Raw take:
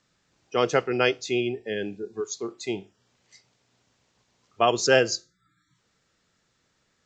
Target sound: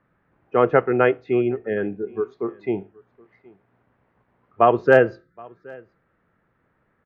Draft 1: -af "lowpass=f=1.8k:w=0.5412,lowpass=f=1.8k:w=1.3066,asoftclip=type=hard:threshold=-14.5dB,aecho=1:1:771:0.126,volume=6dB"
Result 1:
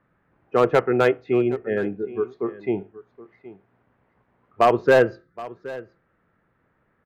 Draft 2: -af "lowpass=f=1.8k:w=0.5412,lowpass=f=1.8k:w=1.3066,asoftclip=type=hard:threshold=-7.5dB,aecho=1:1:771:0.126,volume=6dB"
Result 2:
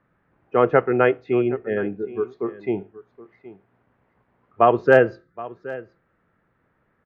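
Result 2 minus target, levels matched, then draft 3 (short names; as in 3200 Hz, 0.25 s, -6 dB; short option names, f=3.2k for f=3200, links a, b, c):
echo-to-direct +7.5 dB
-af "lowpass=f=1.8k:w=0.5412,lowpass=f=1.8k:w=1.3066,asoftclip=type=hard:threshold=-7.5dB,aecho=1:1:771:0.0531,volume=6dB"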